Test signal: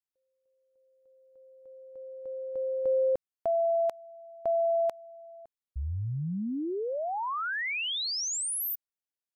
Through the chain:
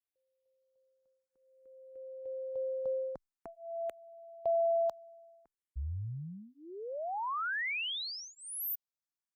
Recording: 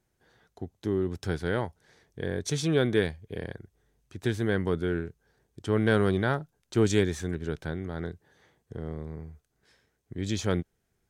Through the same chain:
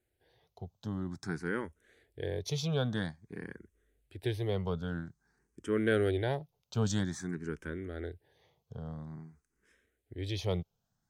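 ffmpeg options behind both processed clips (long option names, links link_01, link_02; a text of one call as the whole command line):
ffmpeg -i in.wav -filter_complex "[0:a]asplit=2[link_01][link_02];[link_02]afreqshift=0.5[link_03];[link_01][link_03]amix=inputs=2:normalize=1,volume=-2.5dB" out.wav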